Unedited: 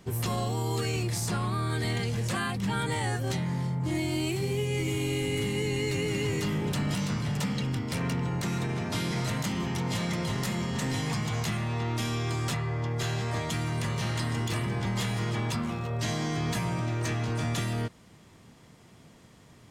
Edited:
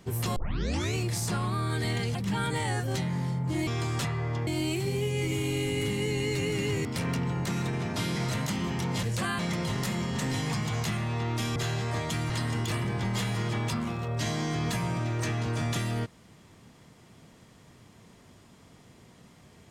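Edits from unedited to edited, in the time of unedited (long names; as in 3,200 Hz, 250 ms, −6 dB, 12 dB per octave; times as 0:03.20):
0:00.36: tape start 0.59 s
0:02.15–0:02.51: move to 0:09.99
0:06.41–0:07.81: remove
0:12.16–0:12.96: move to 0:04.03
0:13.70–0:14.12: remove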